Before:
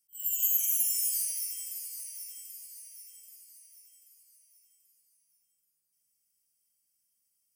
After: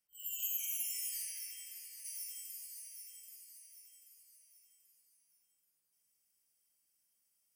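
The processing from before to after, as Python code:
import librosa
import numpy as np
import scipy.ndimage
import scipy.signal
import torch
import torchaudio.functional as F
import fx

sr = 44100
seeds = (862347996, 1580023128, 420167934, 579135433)

y = fx.bass_treble(x, sr, bass_db=-5, treble_db=fx.steps((0.0, -14.0), (2.04, -5.0)))
y = F.gain(torch.from_numpy(y), 3.0).numpy()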